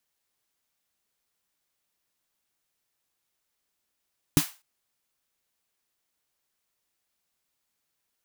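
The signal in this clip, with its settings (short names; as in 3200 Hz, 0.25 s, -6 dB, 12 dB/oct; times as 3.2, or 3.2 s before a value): snare drum length 0.25 s, tones 160 Hz, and 290 Hz, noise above 720 Hz, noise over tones -8 dB, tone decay 0.08 s, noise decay 0.30 s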